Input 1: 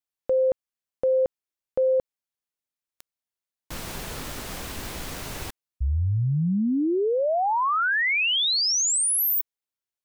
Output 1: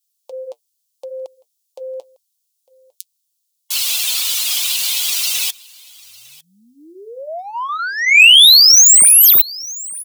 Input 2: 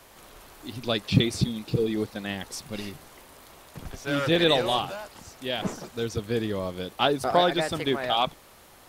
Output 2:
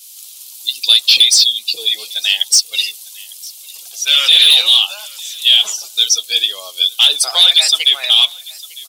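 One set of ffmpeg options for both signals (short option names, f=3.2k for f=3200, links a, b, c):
-filter_complex "[0:a]lowpass=f=3.8k:p=1,afftdn=nr=19:nf=-40,highpass=630,aderivative,asplit=2[a][b];[b]acompressor=threshold=-43dB:ratio=20:attack=4:release=29:knee=1:detection=rms,volume=0.5dB[c];[a][c]amix=inputs=2:normalize=0,asoftclip=type=tanh:threshold=-20.5dB,aexciter=amount=13.4:drive=5.7:freq=2.7k,apsyclip=15dB,flanger=delay=1.5:depth=6.3:regen=-54:speed=0.75:shape=sinusoidal,asoftclip=type=hard:threshold=-4dB,aecho=1:1:903:0.0668,adynamicequalizer=threshold=0.0891:dfrequency=3000:dqfactor=0.7:tfrequency=3000:tqfactor=0.7:attack=5:release=100:ratio=0.333:range=2:mode=cutabove:tftype=highshelf,volume=2.5dB"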